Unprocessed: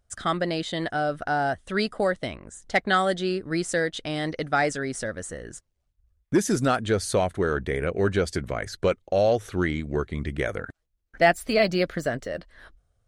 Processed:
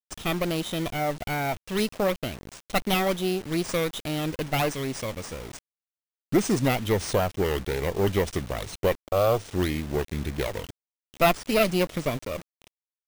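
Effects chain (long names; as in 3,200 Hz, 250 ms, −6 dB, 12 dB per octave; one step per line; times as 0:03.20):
lower of the sound and its delayed copy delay 0.31 ms
bad sample-rate conversion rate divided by 3×, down none, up hold
bit reduction 7 bits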